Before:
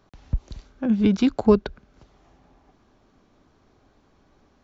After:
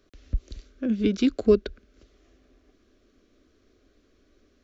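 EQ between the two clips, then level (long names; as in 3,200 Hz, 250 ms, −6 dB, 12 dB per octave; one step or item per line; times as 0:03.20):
phaser with its sweep stopped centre 360 Hz, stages 4
0.0 dB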